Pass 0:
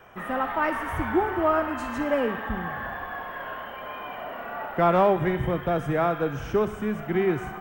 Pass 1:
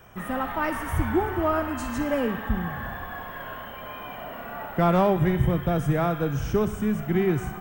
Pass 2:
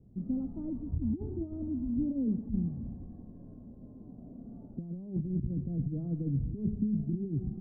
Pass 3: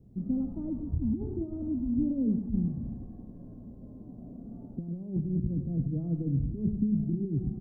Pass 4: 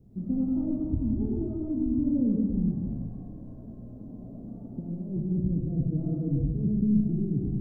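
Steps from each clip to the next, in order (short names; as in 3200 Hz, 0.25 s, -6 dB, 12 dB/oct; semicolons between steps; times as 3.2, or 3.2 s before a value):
tone controls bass +10 dB, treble +11 dB; gain -2.5 dB
negative-ratio compressor -25 dBFS, ratio -0.5; ladder low-pass 310 Hz, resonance 40%; gain +1.5 dB
echo 0.1 s -11 dB; gain +2.5 dB
digital reverb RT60 1.4 s, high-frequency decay 0.5×, pre-delay 20 ms, DRR -0.5 dB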